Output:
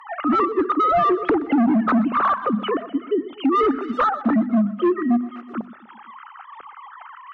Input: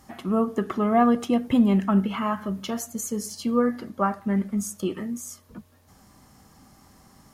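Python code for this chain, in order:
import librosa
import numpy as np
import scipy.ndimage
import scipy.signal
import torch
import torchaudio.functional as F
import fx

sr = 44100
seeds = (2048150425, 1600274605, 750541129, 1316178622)

y = fx.sine_speech(x, sr)
y = fx.hum_notches(y, sr, base_hz=50, count=5)
y = fx.wow_flutter(y, sr, seeds[0], rate_hz=2.1, depth_cents=27.0)
y = fx.peak_eq(y, sr, hz=1300.0, db=13.5, octaves=0.39)
y = fx.rider(y, sr, range_db=3, speed_s=2.0)
y = np.clip(10.0 ** (22.0 / 20.0) * y, -1.0, 1.0) / 10.0 ** (22.0 / 20.0)
y = fx.echo_feedback(y, sr, ms=124, feedback_pct=53, wet_db=-18.5)
y = fx.env_lowpass_down(y, sr, base_hz=1400.0, full_db=-25.5)
y = fx.band_squash(y, sr, depth_pct=40)
y = y * librosa.db_to_amplitude(8.0)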